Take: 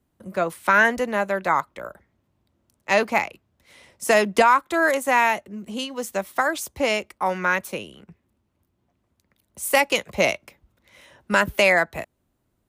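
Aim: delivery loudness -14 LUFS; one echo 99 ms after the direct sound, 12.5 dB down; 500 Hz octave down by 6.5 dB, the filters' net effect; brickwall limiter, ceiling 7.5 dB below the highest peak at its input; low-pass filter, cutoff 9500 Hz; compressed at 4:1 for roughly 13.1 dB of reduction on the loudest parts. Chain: LPF 9500 Hz; bell 500 Hz -8.5 dB; compressor 4:1, threshold -30 dBFS; limiter -22.5 dBFS; echo 99 ms -12.5 dB; gain +20.5 dB

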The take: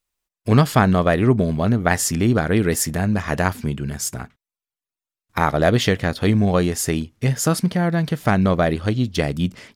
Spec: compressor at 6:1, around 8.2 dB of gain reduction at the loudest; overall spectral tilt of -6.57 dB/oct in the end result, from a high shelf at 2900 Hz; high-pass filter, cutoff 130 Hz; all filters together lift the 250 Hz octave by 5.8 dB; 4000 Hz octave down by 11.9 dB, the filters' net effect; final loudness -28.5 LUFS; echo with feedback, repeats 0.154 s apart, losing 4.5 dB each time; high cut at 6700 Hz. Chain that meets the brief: HPF 130 Hz; LPF 6700 Hz; bell 250 Hz +8.5 dB; high shelf 2900 Hz -8.5 dB; bell 4000 Hz -8.5 dB; compressor 6:1, threshold -16 dBFS; feedback echo 0.154 s, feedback 60%, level -4.5 dB; gain -8 dB

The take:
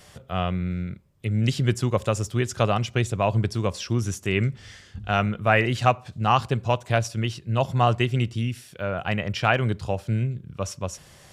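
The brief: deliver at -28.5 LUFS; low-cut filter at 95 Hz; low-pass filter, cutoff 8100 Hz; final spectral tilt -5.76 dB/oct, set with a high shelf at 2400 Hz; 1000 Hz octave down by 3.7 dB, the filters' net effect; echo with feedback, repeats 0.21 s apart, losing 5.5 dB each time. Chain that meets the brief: HPF 95 Hz; LPF 8100 Hz; bell 1000 Hz -4.5 dB; high shelf 2400 Hz -4.5 dB; feedback echo 0.21 s, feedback 53%, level -5.5 dB; gain -3 dB

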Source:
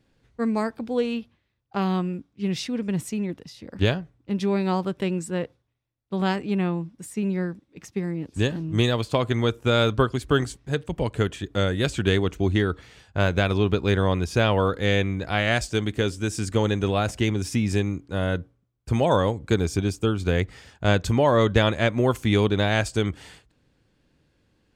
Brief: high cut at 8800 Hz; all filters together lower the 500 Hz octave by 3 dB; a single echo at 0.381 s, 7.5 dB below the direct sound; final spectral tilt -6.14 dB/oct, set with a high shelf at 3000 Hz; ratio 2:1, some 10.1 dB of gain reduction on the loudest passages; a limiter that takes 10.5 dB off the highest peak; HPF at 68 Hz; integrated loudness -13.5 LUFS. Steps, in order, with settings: HPF 68 Hz; LPF 8800 Hz; bell 500 Hz -3.5 dB; high shelf 3000 Hz -6 dB; compressor 2:1, threshold -36 dBFS; limiter -28.5 dBFS; echo 0.381 s -7.5 dB; gain +25 dB

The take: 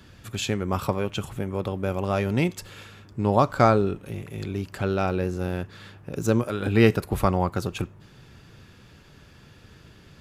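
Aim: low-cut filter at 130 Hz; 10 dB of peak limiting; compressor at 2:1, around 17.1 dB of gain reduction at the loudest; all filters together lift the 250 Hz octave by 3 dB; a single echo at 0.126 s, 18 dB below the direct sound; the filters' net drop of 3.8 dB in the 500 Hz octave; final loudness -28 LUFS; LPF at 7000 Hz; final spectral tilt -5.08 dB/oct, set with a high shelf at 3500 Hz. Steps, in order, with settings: HPF 130 Hz; LPF 7000 Hz; bell 250 Hz +6.5 dB; bell 500 Hz -7.5 dB; high shelf 3500 Hz +8 dB; compressor 2:1, threshold -44 dBFS; limiter -29 dBFS; echo 0.126 s -18 dB; gain +14 dB

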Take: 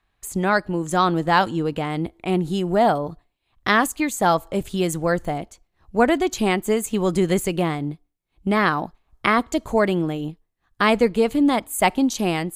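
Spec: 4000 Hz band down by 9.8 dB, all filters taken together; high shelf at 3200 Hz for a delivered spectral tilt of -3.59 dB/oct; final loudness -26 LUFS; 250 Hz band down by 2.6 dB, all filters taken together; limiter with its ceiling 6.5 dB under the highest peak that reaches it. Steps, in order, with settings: bell 250 Hz -3.5 dB; high shelf 3200 Hz -8.5 dB; bell 4000 Hz -7.5 dB; gain -1 dB; limiter -13.5 dBFS

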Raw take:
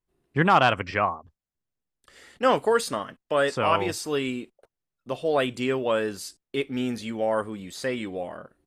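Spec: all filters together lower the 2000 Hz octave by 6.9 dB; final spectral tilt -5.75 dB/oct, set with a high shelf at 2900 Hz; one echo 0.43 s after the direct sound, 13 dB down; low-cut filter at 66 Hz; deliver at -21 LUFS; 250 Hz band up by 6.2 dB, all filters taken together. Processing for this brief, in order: HPF 66 Hz; bell 250 Hz +7.5 dB; bell 2000 Hz -8.5 dB; high shelf 2900 Hz -4 dB; echo 0.43 s -13 dB; gain +4 dB

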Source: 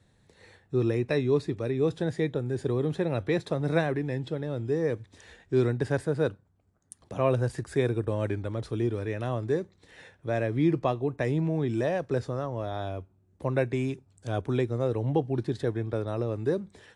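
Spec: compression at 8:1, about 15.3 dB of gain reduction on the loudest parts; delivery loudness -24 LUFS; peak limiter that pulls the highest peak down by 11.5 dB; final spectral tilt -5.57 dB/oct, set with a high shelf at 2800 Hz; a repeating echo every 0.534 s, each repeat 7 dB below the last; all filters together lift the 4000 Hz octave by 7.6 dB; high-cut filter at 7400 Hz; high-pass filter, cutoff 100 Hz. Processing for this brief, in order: HPF 100 Hz; LPF 7400 Hz; high shelf 2800 Hz +4 dB; bell 4000 Hz +6 dB; compressor 8:1, threshold -36 dBFS; limiter -35 dBFS; feedback echo 0.534 s, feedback 45%, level -7 dB; gain +20.5 dB

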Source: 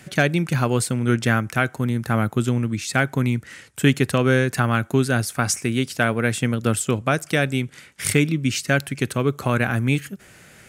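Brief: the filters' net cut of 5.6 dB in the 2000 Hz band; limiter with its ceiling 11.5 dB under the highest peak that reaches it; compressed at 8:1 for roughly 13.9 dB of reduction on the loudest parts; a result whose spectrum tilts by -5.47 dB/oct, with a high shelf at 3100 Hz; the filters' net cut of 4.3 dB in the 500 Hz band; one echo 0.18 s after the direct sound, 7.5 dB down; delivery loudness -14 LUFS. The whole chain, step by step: bell 500 Hz -5 dB; bell 2000 Hz -4.5 dB; high shelf 3100 Hz -9 dB; compressor 8:1, threshold -29 dBFS; limiter -26.5 dBFS; echo 0.18 s -7.5 dB; gain +23 dB

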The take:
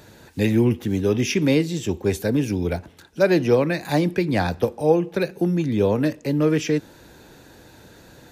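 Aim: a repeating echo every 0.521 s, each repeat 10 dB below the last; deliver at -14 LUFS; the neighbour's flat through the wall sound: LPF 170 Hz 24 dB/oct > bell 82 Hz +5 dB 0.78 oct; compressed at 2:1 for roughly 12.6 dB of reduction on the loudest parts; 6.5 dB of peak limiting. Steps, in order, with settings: compressor 2:1, threshold -36 dBFS; limiter -24 dBFS; LPF 170 Hz 24 dB/oct; bell 82 Hz +5 dB 0.78 oct; feedback echo 0.521 s, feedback 32%, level -10 dB; gain +26 dB

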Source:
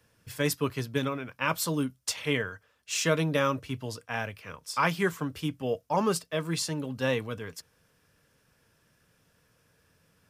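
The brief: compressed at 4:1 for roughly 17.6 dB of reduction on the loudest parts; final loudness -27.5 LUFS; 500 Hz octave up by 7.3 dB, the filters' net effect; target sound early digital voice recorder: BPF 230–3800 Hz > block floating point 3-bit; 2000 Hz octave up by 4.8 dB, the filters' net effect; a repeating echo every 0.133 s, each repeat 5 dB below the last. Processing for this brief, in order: bell 500 Hz +8.5 dB; bell 2000 Hz +6 dB; compressor 4:1, threshold -38 dBFS; BPF 230–3800 Hz; feedback echo 0.133 s, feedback 56%, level -5 dB; block floating point 3-bit; gain +11.5 dB

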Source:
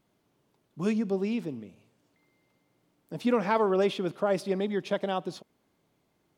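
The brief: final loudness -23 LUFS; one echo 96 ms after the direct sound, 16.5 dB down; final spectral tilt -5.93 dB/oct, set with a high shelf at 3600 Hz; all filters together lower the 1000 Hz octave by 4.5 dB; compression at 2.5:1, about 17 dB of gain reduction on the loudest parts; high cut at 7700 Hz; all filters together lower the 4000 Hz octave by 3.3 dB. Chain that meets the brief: LPF 7700 Hz; bell 1000 Hz -6 dB; high shelf 3600 Hz +7.5 dB; bell 4000 Hz -8.5 dB; compressor 2.5:1, threshold -49 dBFS; echo 96 ms -16.5 dB; gain +22.5 dB

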